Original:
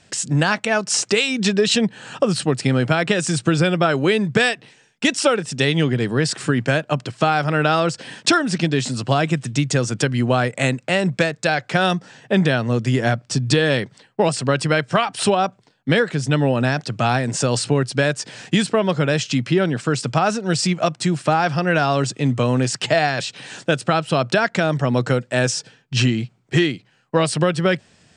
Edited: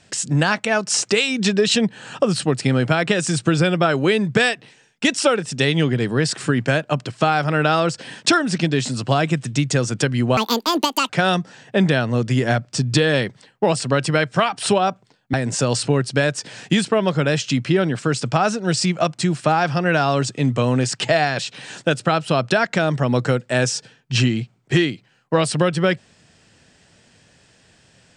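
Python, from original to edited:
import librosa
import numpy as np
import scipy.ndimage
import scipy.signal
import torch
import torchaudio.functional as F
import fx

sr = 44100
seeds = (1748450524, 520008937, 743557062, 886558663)

y = fx.edit(x, sr, fx.speed_span(start_s=10.37, length_s=1.29, speed=1.78),
    fx.cut(start_s=15.9, length_s=1.25), tone=tone)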